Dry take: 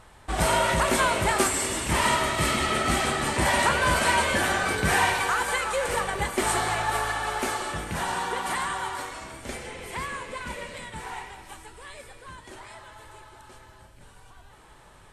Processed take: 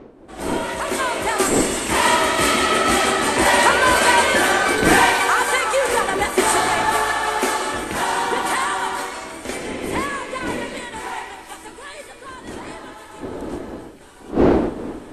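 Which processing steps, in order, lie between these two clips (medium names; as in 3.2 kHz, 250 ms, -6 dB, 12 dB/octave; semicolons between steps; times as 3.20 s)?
fade-in on the opening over 2.35 s; wind noise 310 Hz -34 dBFS; resonant low shelf 210 Hz -9 dB, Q 1.5; trim +7.5 dB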